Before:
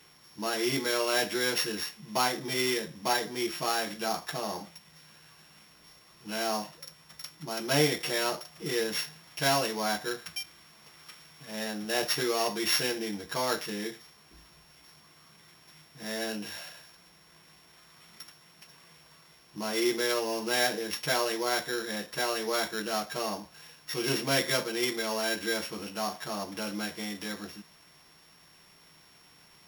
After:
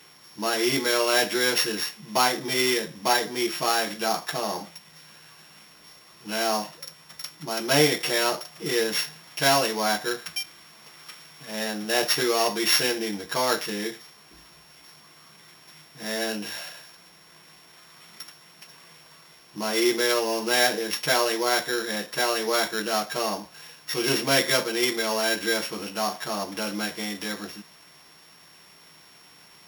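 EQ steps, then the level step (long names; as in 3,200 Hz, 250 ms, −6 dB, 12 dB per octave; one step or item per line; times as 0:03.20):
low-shelf EQ 110 Hz −10.5 dB
+6.0 dB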